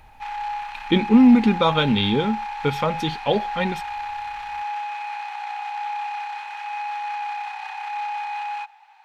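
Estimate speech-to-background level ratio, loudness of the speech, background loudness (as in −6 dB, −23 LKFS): 10.0 dB, −20.0 LKFS, −30.0 LKFS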